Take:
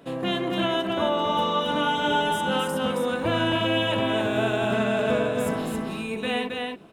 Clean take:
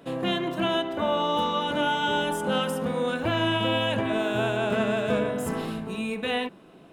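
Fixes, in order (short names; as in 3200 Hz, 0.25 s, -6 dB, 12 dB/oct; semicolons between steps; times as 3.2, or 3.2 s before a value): inverse comb 0.271 s -3.5 dB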